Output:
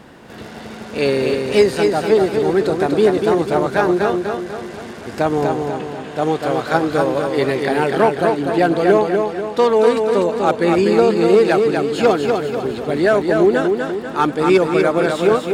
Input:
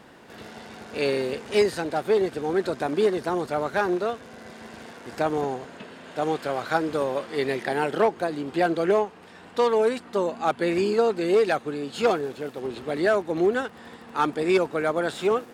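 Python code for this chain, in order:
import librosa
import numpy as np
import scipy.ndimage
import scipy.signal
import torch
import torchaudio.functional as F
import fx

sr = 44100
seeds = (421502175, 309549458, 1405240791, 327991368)

p1 = fx.low_shelf(x, sr, hz=290.0, db=6.0)
p2 = p1 + fx.echo_feedback(p1, sr, ms=245, feedback_pct=48, wet_db=-4.5, dry=0)
y = F.gain(torch.from_numpy(p2), 5.5).numpy()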